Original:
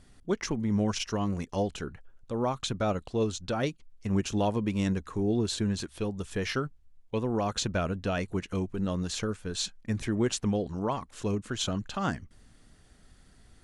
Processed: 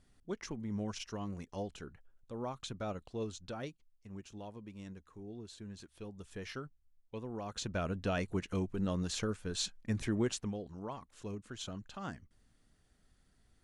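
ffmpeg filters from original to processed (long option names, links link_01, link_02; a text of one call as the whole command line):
ffmpeg -i in.wav -af "volume=5dB,afade=type=out:start_time=3.43:duration=0.64:silence=0.354813,afade=type=in:start_time=5.57:duration=0.72:silence=0.446684,afade=type=in:start_time=7.46:duration=0.57:silence=0.354813,afade=type=out:start_time=10.13:duration=0.42:silence=0.375837" out.wav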